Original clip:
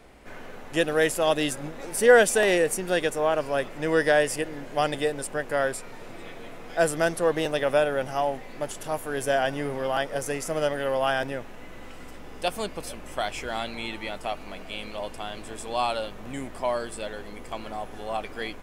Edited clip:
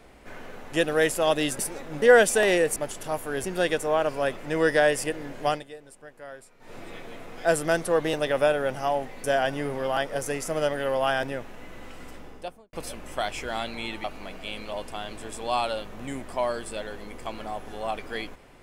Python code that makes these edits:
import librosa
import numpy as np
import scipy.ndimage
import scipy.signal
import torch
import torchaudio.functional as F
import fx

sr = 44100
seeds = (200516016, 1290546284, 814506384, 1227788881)

y = fx.studio_fade_out(x, sr, start_s=12.12, length_s=0.61)
y = fx.edit(y, sr, fx.reverse_span(start_s=1.59, length_s=0.43),
    fx.fade_down_up(start_s=4.8, length_s=1.27, db=-17.0, fade_s=0.16),
    fx.move(start_s=8.56, length_s=0.68, to_s=2.76),
    fx.cut(start_s=14.04, length_s=0.26), tone=tone)